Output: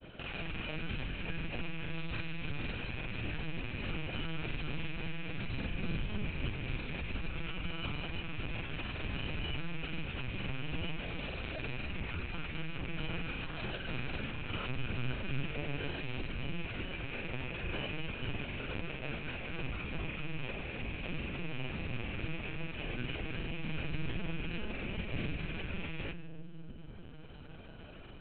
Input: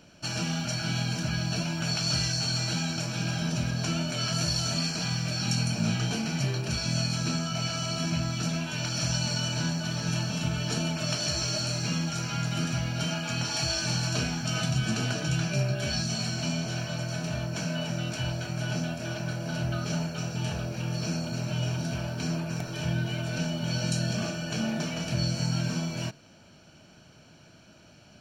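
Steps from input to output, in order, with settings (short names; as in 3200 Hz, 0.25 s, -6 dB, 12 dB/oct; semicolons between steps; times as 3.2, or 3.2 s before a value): rattling part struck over -39 dBFS, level -22 dBFS; resonator 90 Hz, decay 1.2 s, harmonics all, mix 70%; analogue delay 0.308 s, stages 1024, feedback 49%, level -3 dB; LPC vocoder at 8 kHz pitch kept; upward compressor, threshold -37 dBFS; grains, grains 20/s, spray 27 ms, pitch spread up and down by 0 st; gain +1 dB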